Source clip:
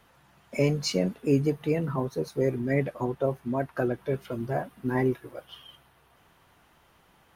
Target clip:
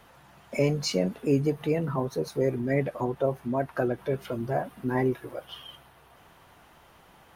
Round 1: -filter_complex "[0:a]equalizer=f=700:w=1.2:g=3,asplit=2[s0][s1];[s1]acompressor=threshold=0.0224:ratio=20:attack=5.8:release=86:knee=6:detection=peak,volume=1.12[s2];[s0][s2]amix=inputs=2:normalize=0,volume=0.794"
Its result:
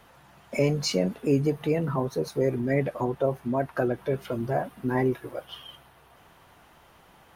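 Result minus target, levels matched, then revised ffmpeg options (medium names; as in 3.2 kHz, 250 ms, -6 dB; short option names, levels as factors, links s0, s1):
compression: peak gain reduction -6.5 dB
-filter_complex "[0:a]equalizer=f=700:w=1.2:g=3,asplit=2[s0][s1];[s1]acompressor=threshold=0.01:ratio=20:attack=5.8:release=86:knee=6:detection=peak,volume=1.12[s2];[s0][s2]amix=inputs=2:normalize=0,volume=0.794"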